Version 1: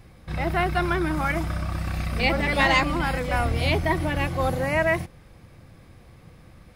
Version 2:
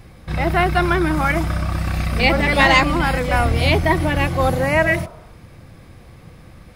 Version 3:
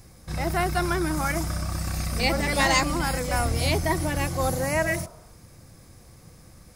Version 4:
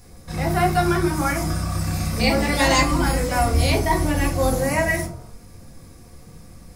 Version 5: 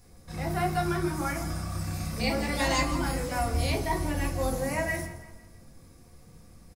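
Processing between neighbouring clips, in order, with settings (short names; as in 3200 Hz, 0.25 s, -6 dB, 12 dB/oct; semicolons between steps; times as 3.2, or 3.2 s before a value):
spectral repair 4.88–5.37, 350–1500 Hz both; gain +6.5 dB
resonant high shelf 4400 Hz +11 dB, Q 1.5; gain -7.5 dB
shoebox room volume 180 m³, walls furnished, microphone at 1.8 m
feedback echo 0.166 s, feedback 43%, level -15 dB; gain -9 dB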